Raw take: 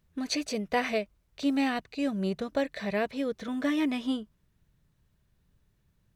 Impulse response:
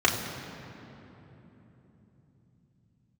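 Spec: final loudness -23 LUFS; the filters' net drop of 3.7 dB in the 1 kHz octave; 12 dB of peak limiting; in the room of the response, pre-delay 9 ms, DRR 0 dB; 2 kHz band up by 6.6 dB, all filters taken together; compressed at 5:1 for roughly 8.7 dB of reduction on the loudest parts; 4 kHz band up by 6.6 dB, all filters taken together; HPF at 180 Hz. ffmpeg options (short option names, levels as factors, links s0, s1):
-filter_complex "[0:a]highpass=180,equalizer=f=1000:t=o:g=-7.5,equalizer=f=2000:t=o:g=8,equalizer=f=4000:t=o:g=6,acompressor=threshold=0.0316:ratio=5,alimiter=level_in=1.68:limit=0.0631:level=0:latency=1,volume=0.596,asplit=2[s0][s1];[1:a]atrim=start_sample=2205,adelay=9[s2];[s1][s2]afir=irnorm=-1:irlink=0,volume=0.158[s3];[s0][s3]amix=inputs=2:normalize=0,volume=3.98"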